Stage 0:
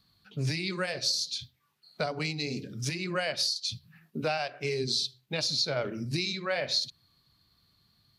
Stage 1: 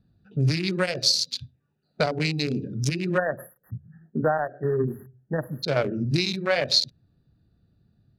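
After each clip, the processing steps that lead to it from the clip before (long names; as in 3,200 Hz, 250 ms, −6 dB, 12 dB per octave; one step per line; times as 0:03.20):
adaptive Wiener filter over 41 samples
time-frequency box erased 0:03.18–0:05.64, 1,900–11,000 Hz
level +9 dB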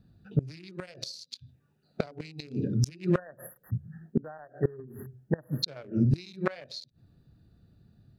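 gate with flip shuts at −17 dBFS, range −25 dB
level +4 dB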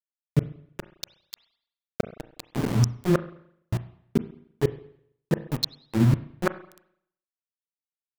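centre clipping without the shift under −29.5 dBFS
on a send at −13 dB: convolution reverb RT60 0.70 s, pre-delay 33 ms
on the sum: level +4 dB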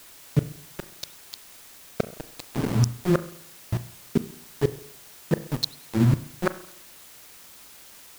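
bit-depth reduction 8 bits, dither triangular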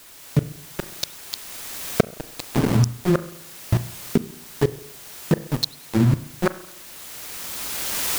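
camcorder AGC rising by 14 dB per second
level +1.5 dB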